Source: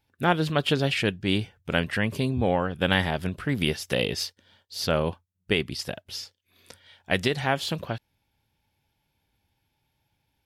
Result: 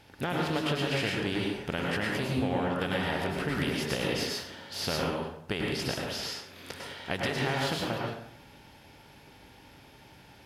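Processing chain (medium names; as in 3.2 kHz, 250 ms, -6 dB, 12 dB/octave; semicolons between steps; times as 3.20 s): spectral levelling over time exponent 0.6; compression, threshold -22 dBFS, peak gain reduction 8.5 dB; plate-style reverb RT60 0.71 s, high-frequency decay 0.65×, pre-delay 90 ms, DRR -2 dB; trim -6.5 dB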